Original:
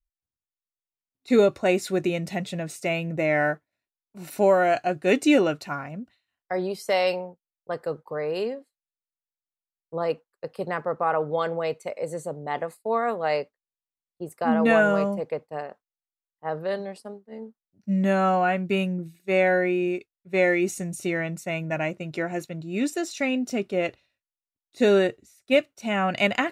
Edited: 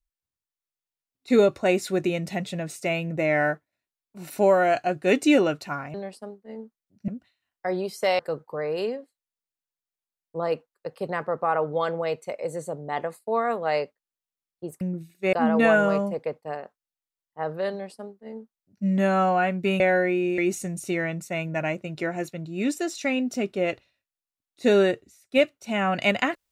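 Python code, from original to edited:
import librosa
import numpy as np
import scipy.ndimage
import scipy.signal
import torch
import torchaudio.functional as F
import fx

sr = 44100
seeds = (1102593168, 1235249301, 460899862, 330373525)

y = fx.edit(x, sr, fx.cut(start_s=7.05, length_s=0.72),
    fx.duplicate(start_s=16.77, length_s=1.14, to_s=5.94),
    fx.move(start_s=18.86, length_s=0.52, to_s=14.39),
    fx.cut(start_s=19.96, length_s=0.58), tone=tone)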